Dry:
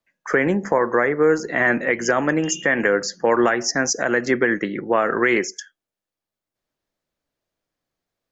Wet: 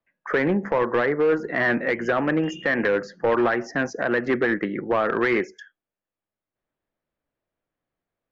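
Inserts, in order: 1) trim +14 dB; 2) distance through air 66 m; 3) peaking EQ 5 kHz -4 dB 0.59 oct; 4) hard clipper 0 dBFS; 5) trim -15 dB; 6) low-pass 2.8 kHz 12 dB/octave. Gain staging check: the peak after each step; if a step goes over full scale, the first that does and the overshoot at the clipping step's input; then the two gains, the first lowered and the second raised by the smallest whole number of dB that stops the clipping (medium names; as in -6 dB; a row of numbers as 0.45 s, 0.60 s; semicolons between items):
+8.0 dBFS, +8.0 dBFS, +8.0 dBFS, 0.0 dBFS, -15.0 dBFS, -14.5 dBFS; step 1, 8.0 dB; step 1 +6 dB, step 5 -7 dB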